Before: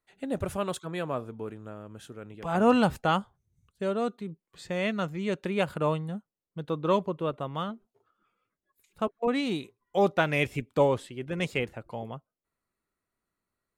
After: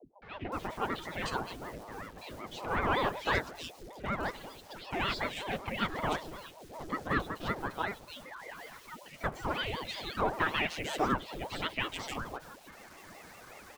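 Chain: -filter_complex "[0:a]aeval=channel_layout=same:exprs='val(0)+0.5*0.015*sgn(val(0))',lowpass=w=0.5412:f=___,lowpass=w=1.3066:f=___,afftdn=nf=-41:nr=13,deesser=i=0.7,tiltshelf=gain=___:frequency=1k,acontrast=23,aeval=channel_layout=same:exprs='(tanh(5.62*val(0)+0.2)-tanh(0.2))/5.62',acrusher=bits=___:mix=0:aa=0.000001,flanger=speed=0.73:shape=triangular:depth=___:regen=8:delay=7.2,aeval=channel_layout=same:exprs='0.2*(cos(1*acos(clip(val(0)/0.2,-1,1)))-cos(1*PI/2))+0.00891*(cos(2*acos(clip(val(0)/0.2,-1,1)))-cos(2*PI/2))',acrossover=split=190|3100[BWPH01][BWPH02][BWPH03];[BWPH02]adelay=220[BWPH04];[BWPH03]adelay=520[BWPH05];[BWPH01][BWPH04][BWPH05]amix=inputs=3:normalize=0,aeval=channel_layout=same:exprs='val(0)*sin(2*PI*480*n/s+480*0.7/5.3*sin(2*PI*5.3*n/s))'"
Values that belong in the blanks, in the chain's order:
6.3k, 6.3k, -6.5, 7, 6.1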